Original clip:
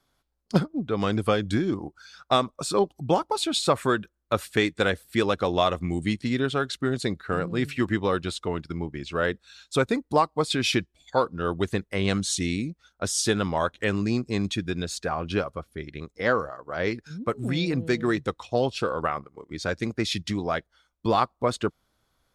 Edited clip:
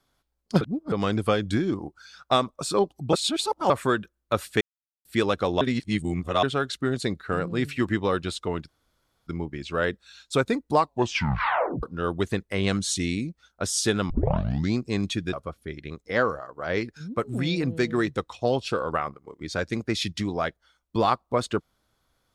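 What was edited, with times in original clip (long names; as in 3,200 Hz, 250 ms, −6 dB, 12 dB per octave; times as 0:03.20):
0:00.61–0:00.92: reverse
0:03.13–0:03.70: reverse
0:04.61–0:05.05: silence
0:05.61–0:06.43: reverse
0:08.68: splice in room tone 0.59 s
0:10.22: tape stop 1.02 s
0:13.51: tape start 0.66 s
0:14.74–0:15.43: remove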